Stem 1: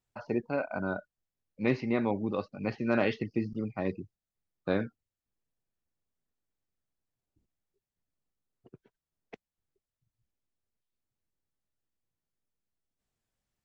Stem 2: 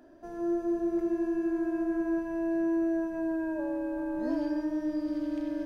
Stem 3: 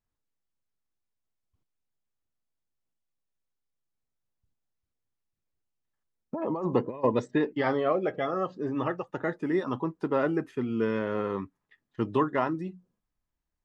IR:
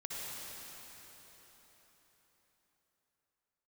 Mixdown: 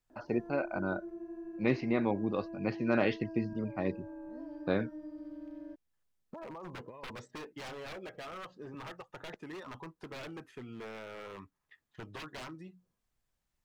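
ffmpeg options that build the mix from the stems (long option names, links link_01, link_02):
-filter_complex "[0:a]volume=-1.5dB[link_01];[1:a]highshelf=frequency=2400:gain=-11,adelay=100,volume=-4.5dB[link_02];[2:a]equalizer=frequency=270:width=0.69:gain=-9,aeval=exprs='0.0316*(abs(mod(val(0)/0.0316+3,4)-2)-1)':channel_layout=same,volume=1dB,asplit=2[link_03][link_04];[link_04]apad=whole_len=253913[link_05];[link_02][link_05]sidechaincompress=threshold=-42dB:ratio=4:attack=9.7:release=1110[link_06];[link_06][link_03]amix=inputs=2:normalize=0,acompressor=threshold=-50dB:ratio=2,volume=0dB[link_07];[link_01][link_07]amix=inputs=2:normalize=0"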